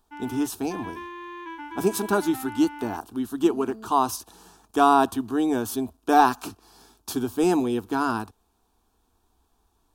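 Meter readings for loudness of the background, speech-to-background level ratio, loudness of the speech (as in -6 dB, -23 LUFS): -39.5 LUFS, 15.0 dB, -24.5 LUFS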